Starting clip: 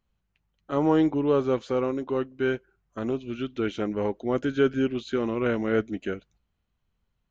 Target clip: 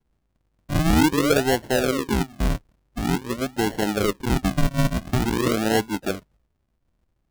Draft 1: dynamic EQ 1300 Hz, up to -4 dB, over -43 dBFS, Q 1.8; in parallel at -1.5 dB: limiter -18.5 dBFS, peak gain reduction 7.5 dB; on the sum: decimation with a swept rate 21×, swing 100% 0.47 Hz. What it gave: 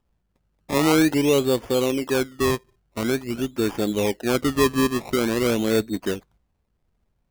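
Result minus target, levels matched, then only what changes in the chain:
decimation with a swept rate: distortion -22 dB
change: decimation with a swept rate 71×, swing 100% 0.47 Hz

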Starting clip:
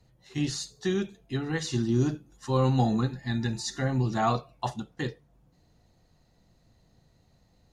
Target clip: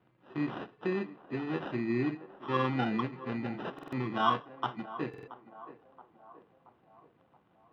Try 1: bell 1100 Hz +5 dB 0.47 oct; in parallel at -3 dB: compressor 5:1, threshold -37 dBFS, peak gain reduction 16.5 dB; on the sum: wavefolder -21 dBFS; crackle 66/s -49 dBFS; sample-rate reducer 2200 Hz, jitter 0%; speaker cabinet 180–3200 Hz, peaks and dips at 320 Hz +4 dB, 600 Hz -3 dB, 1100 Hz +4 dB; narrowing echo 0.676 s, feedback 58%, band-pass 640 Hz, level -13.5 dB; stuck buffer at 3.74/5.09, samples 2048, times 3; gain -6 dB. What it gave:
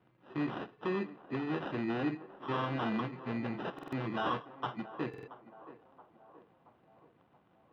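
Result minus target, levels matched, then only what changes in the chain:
wavefolder: distortion +34 dB
change: wavefolder -12 dBFS

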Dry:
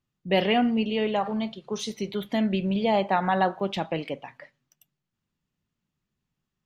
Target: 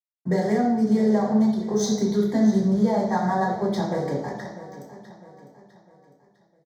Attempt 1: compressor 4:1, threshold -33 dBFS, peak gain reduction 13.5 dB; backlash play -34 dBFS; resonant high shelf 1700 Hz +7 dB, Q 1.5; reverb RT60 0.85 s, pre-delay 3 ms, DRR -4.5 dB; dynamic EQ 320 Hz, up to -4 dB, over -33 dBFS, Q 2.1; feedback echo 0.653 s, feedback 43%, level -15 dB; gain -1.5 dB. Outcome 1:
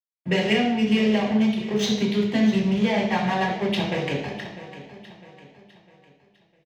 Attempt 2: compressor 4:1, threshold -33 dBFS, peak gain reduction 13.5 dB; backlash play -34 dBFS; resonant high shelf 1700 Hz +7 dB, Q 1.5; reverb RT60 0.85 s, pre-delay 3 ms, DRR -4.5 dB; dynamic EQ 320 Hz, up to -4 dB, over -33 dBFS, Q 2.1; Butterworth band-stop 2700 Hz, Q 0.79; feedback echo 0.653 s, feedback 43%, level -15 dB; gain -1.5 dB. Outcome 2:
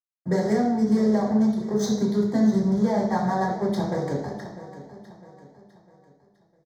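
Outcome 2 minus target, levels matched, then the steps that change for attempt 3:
backlash: distortion +8 dB
change: backlash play -43 dBFS

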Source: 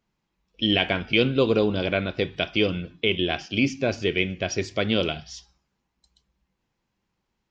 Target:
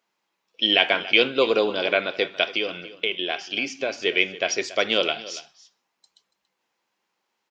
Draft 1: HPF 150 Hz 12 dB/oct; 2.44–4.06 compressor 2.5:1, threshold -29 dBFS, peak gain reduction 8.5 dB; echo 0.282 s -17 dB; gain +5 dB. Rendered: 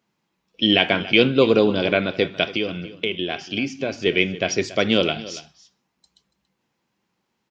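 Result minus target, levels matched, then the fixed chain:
125 Hz band +15.0 dB
HPF 500 Hz 12 dB/oct; 2.44–4.06 compressor 2.5:1, threshold -29 dBFS, peak gain reduction 7.5 dB; echo 0.282 s -17 dB; gain +5 dB

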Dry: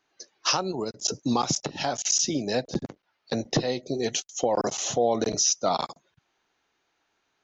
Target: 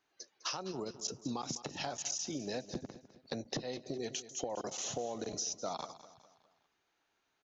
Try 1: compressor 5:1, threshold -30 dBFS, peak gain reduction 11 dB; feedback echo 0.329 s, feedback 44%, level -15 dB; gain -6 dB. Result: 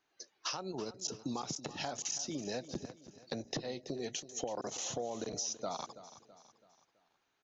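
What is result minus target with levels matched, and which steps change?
echo 0.125 s late
change: feedback echo 0.204 s, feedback 44%, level -15 dB

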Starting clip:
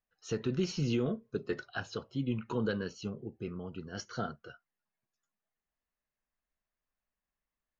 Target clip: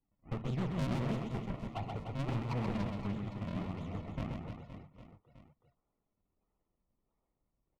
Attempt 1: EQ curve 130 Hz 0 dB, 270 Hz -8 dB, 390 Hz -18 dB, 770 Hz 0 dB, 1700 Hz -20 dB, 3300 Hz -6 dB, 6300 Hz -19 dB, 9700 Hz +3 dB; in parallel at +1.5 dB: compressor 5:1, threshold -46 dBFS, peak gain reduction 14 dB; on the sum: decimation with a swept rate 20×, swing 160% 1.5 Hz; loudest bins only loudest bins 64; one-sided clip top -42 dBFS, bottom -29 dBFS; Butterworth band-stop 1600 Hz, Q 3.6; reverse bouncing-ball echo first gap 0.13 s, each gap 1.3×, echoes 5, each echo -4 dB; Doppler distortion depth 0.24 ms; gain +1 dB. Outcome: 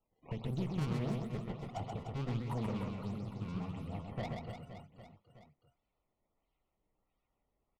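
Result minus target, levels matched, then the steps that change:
compressor: peak gain reduction +9 dB; decimation with a swept rate: distortion -10 dB
change: compressor 5:1, threshold -35 dBFS, peak gain reduction 5.5 dB; change: decimation with a swept rate 62×, swing 160% 1.5 Hz

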